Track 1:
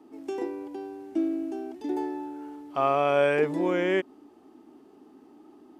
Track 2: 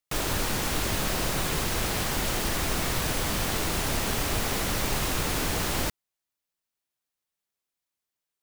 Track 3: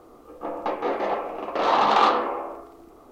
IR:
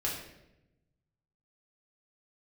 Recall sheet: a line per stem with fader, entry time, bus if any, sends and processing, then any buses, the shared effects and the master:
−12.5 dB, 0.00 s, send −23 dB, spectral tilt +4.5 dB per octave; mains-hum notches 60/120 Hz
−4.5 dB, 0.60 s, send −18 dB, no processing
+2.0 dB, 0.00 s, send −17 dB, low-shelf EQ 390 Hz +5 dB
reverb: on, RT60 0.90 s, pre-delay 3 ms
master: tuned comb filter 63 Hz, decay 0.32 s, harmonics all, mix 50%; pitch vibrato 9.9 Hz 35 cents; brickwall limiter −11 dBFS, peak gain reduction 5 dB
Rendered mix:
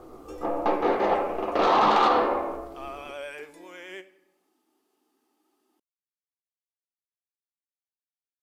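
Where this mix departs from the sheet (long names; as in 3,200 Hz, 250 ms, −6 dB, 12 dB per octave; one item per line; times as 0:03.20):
stem 2: muted
reverb return +7.0 dB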